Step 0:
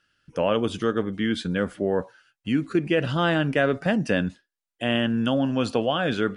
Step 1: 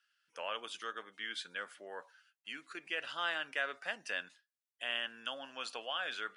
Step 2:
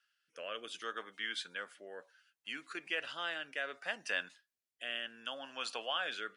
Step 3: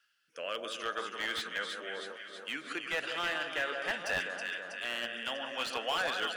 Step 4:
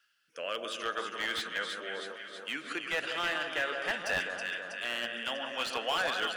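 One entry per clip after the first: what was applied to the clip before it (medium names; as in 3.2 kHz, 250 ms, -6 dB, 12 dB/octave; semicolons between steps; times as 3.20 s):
high-pass 1.2 kHz 12 dB/octave; trim -7.5 dB
rotary cabinet horn 0.65 Hz; trim +3 dB
chunks repeated in reverse 218 ms, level -11.5 dB; echo whose repeats swap between lows and highs 161 ms, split 1.5 kHz, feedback 79%, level -5.5 dB; slew-rate limiter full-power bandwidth 46 Hz; trim +5 dB
reverberation RT60 1.2 s, pre-delay 112 ms, DRR 17 dB; trim +1.5 dB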